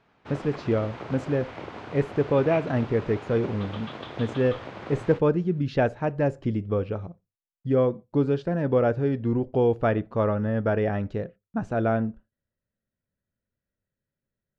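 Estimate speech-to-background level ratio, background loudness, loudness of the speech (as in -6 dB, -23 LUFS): 13.0 dB, -39.0 LUFS, -26.0 LUFS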